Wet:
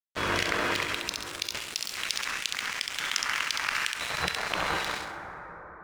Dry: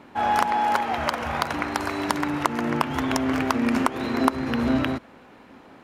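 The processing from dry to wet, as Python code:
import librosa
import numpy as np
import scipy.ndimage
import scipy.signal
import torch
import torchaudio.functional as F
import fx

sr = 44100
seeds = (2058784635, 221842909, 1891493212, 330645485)

y = scipy.signal.sosfilt(scipy.signal.butter(2, 5700.0, 'lowpass', fs=sr, output='sos'), x)
y = fx.spec_gate(y, sr, threshold_db=-20, keep='weak')
y = fx.highpass(y, sr, hz=1100.0, slope=24, at=(1.64, 3.92))
y = np.sign(y) * np.maximum(np.abs(y) - 10.0 ** (-40.5 / 20.0), 0.0)
y = fx.echo_wet_highpass(y, sr, ms=67, feedback_pct=32, hz=2000.0, wet_db=-6)
y = fx.rev_plate(y, sr, seeds[0], rt60_s=2.7, hf_ratio=0.35, predelay_ms=0, drr_db=13.0)
y = fx.env_flatten(y, sr, amount_pct=50)
y = y * librosa.db_to_amplitude(6.0)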